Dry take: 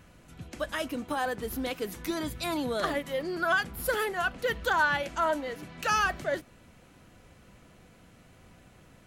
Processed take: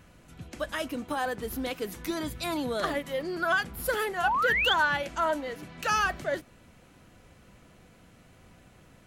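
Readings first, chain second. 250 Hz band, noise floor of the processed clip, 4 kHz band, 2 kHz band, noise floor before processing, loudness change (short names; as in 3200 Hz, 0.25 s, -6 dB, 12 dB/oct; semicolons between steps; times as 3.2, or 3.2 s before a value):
0.0 dB, -57 dBFS, +4.0 dB, +1.0 dB, -57 dBFS, +1.0 dB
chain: painted sound rise, 4.23–4.74, 700–3600 Hz -26 dBFS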